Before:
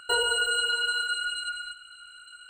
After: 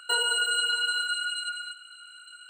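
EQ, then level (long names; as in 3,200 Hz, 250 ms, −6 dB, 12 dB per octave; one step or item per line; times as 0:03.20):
high-pass filter 1,200 Hz 6 dB per octave
+1.5 dB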